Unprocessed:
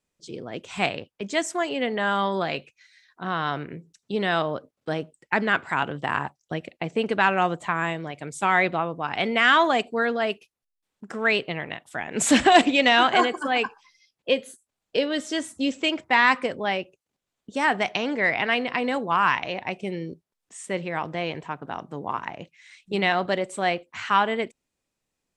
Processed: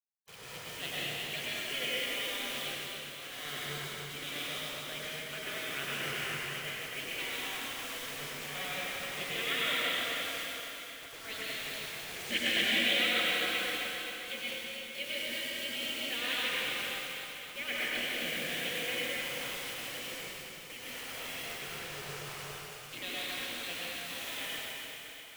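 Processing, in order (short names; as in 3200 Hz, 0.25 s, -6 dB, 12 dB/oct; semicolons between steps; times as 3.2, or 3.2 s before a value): vowel filter i; in parallel at -3 dB: vocal rider within 3 dB 2 s; on the sum: bit-crush 8-bit; spectral gate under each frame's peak -15 dB weak; on a send: thinning echo 0.26 s, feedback 63%, high-pass 970 Hz, level -7 dB; on the sum: plate-style reverb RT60 3.4 s, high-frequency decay 0.8×, pre-delay 85 ms, DRR -7.5 dB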